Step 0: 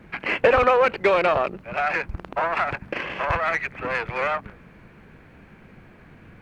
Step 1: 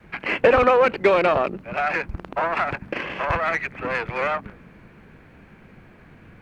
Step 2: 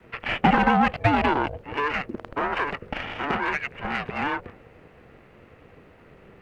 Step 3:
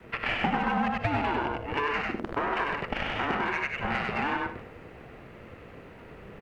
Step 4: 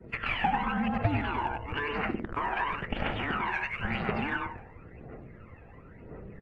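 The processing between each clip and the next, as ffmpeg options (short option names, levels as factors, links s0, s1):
-af "adynamicequalizer=threshold=0.0178:dfrequency=250:dqfactor=1:tfrequency=250:tqfactor=1:attack=5:release=100:ratio=0.375:range=3:mode=boostabove:tftype=bell"
-af "aeval=exprs='val(0)*sin(2*PI*290*n/s)':c=same"
-filter_complex "[0:a]asplit=2[s0][s1];[s1]aecho=0:1:97:0.631[s2];[s0][s2]amix=inputs=2:normalize=0,acompressor=threshold=0.0355:ratio=4,asplit=2[s3][s4];[s4]aecho=0:1:60|78:0.224|0.237[s5];[s3][s5]amix=inputs=2:normalize=0,volume=1.33"
-af "afftdn=nr=18:nf=-51,aphaser=in_gain=1:out_gain=1:delay=1.3:decay=0.61:speed=0.97:type=triangular,volume=0.631" -ar 24000 -c:a aac -b:a 64k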